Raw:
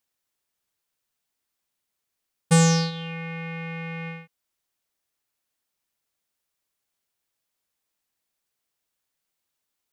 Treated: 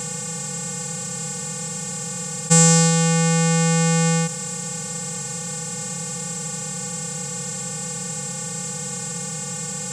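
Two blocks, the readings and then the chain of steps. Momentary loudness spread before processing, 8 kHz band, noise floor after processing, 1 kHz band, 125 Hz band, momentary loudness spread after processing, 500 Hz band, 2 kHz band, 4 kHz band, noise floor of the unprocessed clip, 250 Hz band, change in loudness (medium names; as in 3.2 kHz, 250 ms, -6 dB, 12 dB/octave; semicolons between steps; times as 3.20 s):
17 LU, +17.0 dB, -30 dBFS, +8.0 dB, +7.5 dB, 11 LU, +7.5 dB, +7.0 dB, +7.5 dB, -82 dBFS, +7.5 dB, +3.0 dB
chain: spectral levelling over time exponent 0.2; peaking EQ 7.5 kHz +14 dB 0.28 oct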